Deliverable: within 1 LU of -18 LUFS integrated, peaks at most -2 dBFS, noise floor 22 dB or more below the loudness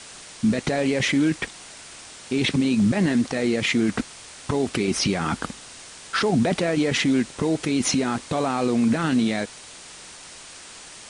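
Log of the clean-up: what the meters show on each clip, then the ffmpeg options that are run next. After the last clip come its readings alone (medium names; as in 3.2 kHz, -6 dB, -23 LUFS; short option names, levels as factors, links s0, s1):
noise floor -43 dBFS; noise floor target -45 dBFS; loudness -23.0 LUFS; peak level -10.5 dBFS; loudness target -18.0 LUFS
-> -af "afftdn=nr=6:nf=-43"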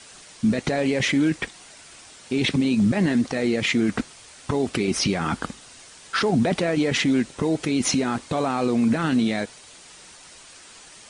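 noise floor -47 dBFS; loudness -23.0 LUFS; peak level -10.5 dBFS; loudness target -18.0 LUFS
-> -af "volume=1.78"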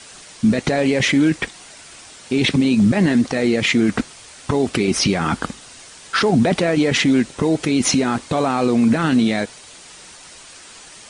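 loudness -18.0 LUFS; peak level -5.5 dBFS; noise floor -42 dBFS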